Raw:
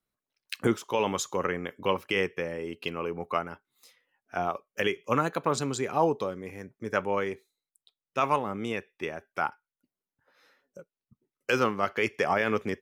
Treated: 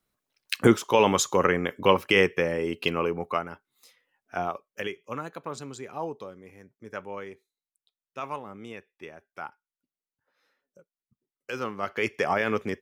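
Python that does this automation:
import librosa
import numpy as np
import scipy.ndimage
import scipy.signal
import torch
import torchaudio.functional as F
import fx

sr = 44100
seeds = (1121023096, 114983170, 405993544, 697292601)

y = fx.gain(x, sr, db=fx.line((2.98, 7.0), (3.39, 0.5), (4.39, 0.5), (5.14, -9.0), (11.5, -9.0), (12.06, 0.5)))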